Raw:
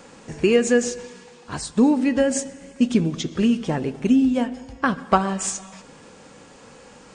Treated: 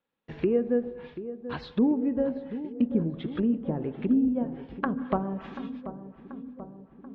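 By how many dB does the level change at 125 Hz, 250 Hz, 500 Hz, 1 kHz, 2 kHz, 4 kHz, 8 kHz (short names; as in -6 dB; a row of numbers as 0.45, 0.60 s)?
-6.0 dB, -6.0 dB, -7.0 dB, -11.0 dB, -14.0 dB, under -15 dB, under -40 dB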